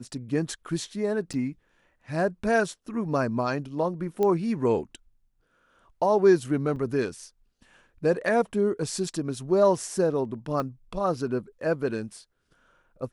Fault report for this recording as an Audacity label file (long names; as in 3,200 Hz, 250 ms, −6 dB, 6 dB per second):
1.330000	1.340000	drop-out 6.8 ms
4.230000	4.230000	click −15 dBFS
6.760000	6.760000	drop-out 4.6 ms
10.600000	10.600000	click −18 dBFS